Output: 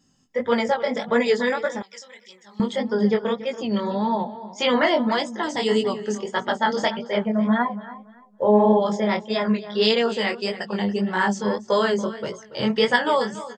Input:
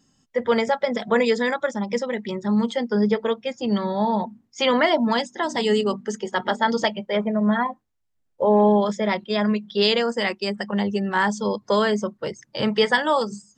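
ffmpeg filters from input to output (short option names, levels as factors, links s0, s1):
-filter_complex "[0:a]asplit=2[s0][s1];[s1]adelay=283,lowpass=f=4800:p=1,volume=0.188,asplit=2[s2][s3];[s3]adelay=283,lowpass=f=4800:p=1,volume=0.25,asplit=2[s4][s5];[s5]adelay=283,lowpass=f=4800:p=1,volume=0.25[s6];[s0][s2][s4][s6]amix=inputs=4:normalize=0,flanger=delay=16.5:depth=7.7:speed=1.7,asettb=1/sr,asplit=3[s7][s8][s9];[s7]atrim=end=1.824[s10];[s8]atrim=start=1.82:end=2.6,asetpts=PTS-STARTPTS,afade=t=in:d=0.004:c=qsin,afade=t=out:st=0.776:d=0.004:c=qsin,aderivative[s11];[s9]atrim=start=2.596[s12];[s10][s11]acrossfade=d=0.004:c1=hsin:c2=qsin[s13];[s13][s12]acrossfade=d=0.004:c1=qsin:c2=hsin,volume=1.33"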